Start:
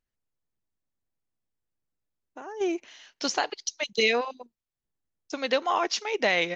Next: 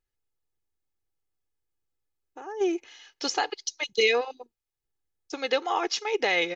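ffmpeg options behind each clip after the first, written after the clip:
-af "aecho=1:1:2.4:0.61,volume=-1.5dB"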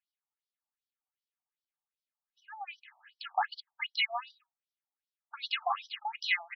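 -af "afftfilt=real='re*between(b*sr/1024,830*pow(4300/830,0.5+0.5*sin(2*PI*2.6*pts/sr))/1.41,830*pow(4300/830,0.5+0.5*sin(2*PI*2.6*pts/sr))*1.41)':imag='im*between(b*sr/1024,830*pow(4300/830,0.5+0.5*sin(2*PI*2.6*pts/sr))/1.41,830*pow(4300/830,0.5+0.5*sin(2*PI*2.6*pts/sr))*1.41)':win_size=1024:overlap=0.75"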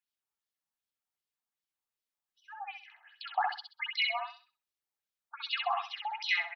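-af "aecho=1:1:65|130|195|260:0.668|0.167|0.0418|0.0104,volume=-1dB"

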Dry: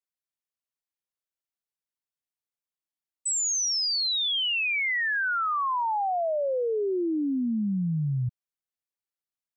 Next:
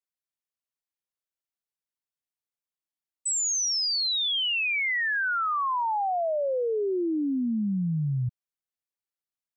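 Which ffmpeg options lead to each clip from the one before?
-af anull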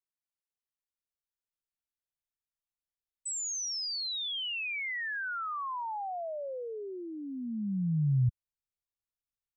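-af "asubboost=boost=11:cutoff=94,volume=-8.5dB"

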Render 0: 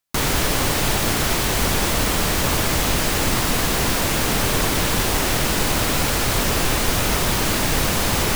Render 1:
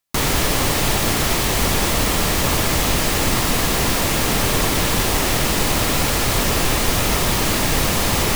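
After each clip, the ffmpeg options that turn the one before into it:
-af "bandreject=f=1.5k:w=17,volume=1.5dB"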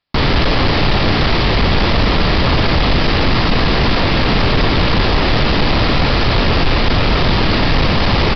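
-af "lowshelf=f=240:g=4,aresample=11025,asoftclip=type=tanh:threshold=-14dB,aresample=44100,volume=7dB"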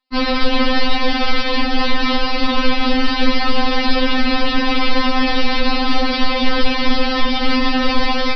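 -af "afftfilt=real='re*3.46*eq(mod(b,12),0)':imag='im*3.46*eq(mod(b,12),0)':win_size=2048:overlap=0.75"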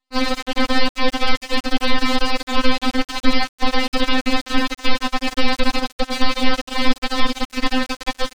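-af "aeval=exprs='max(val(0),0)':c=same"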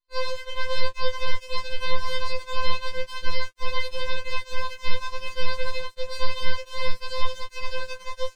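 -af "flanger=delay=18:depth=4.3:speed=0.93,afftfilt=real='re*2.83*eq(mod(b,8),0)':imag='im*2.83*eq(mod(b,8),0)':win_size=2048:overlap=0.75,volume=-7.5dB"

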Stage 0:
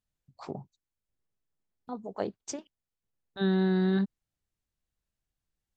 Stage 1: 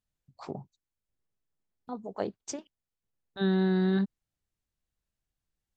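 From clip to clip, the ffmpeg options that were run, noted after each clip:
-af anull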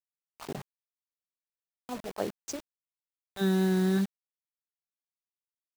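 -af "acrusher=bits=6:mix=0:aa=0.000001"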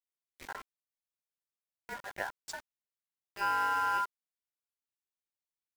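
-af "aeval=exprs='val(0)*sin(2*PI*1200*n/s)':c=same,volume=-2dB"

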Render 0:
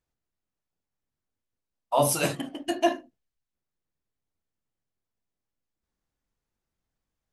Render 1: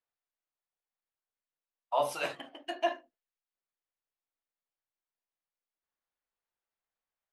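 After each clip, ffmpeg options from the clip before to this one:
-filter_complex "[0:a]acrossover=split=480 4000:gain=0.112 1 0.158[a][b][c];[a][b][c]amix=inputs=3:normalize=0,volume=-4dB"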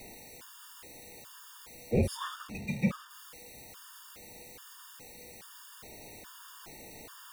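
-af "aeval=exprs='val(0)+0.5*0.0119*sgn(val(0))':c=same,afreqshift=-490,afftfilt=real='re*gt(sin(2*PI*1.2*pts/sr)*(1-2*mod(floor(b*sr/1024/920),2)),0)':imag='im*gt(sin(2*PI*1.2*pts/sr)*(1-2*mod(floor(b*sr/1024/920),2)),0)':win_size=1024:overlap=0.75,volume=1.5dB"

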